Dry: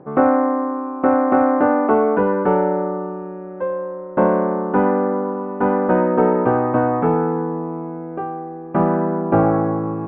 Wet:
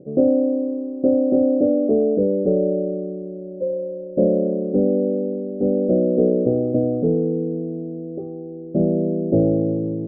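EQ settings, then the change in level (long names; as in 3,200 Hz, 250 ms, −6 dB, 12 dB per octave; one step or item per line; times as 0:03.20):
elliptic low-pass filter 590 Hz, stop band 40 dB
0.0 dB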